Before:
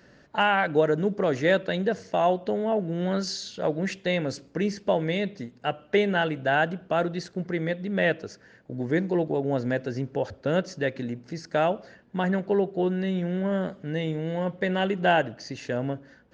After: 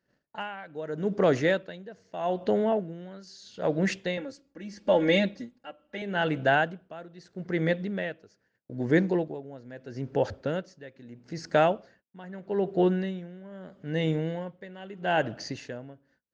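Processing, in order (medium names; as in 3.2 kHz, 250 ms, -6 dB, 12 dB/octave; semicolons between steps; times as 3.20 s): gate -51 dBFS, range -27 dB; 4.17–6.02 s: comb 3.6 ms, depth 99%; logarithmic tremolo 0.78 Hz, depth 21 dB; trim +2.5 dB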